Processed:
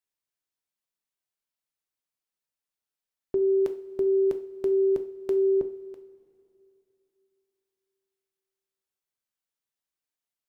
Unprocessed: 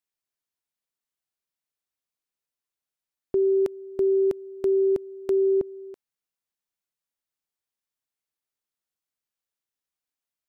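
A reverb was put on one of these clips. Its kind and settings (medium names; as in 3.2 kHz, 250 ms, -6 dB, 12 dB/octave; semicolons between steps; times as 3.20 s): two-slope reverb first 0.39 s, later 3 s, from -18 dB, DRR 6.5 dB; trim -2.5 dB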